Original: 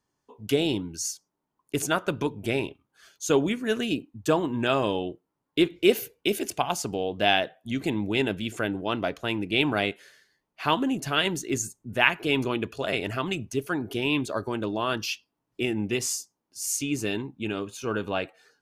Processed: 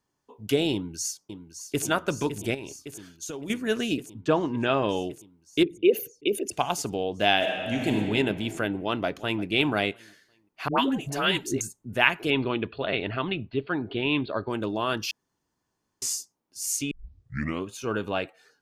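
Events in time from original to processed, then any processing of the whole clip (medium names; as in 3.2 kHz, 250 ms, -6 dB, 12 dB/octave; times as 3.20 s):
0.73–1.85 s: echo throw 560 ms, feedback 80%, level -10 dB
2.54–3.50 s: compression 12:1, threshold -32 dBFS
4.21–4.89 s: low-pass 3.5 kHz
5.63–6.53 s: resonances exaggerated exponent 2
7.35–7.95 s: reverb throw, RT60 2.7 s, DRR -0.5 dB
8.74–9.43 s: echo throw 350 ms, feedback 30%, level -17.5 dB
10.68–11.61 s: phase dispersion highs, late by 99 ms, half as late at 660 Hz
12.30–14.50 s: steep low-pass 4.4 kHz 96 dB/octave
15.11–16.02 s: room tone
16.91 s: tape start 0.75 s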